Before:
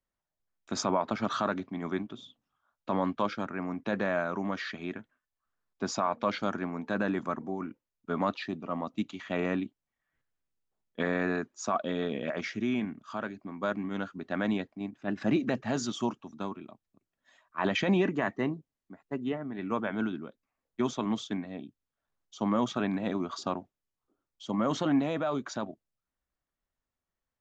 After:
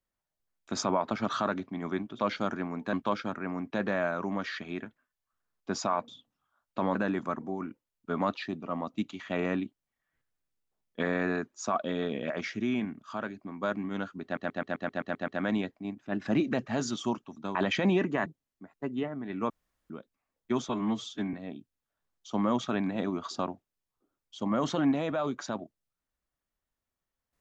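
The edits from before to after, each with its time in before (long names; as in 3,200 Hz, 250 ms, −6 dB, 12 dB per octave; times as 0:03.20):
0:02.19–0:03.06: swap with 0:06.21–0:06.95
0:14.24: stutter 0.13 s, 9 plays
0:16.51–0:17.59: remove
0:18.30–0:18.55: remove
0:19.79–0:20.19: fill with room tone
0:20.98–0:21.41: time-stretch 1.5×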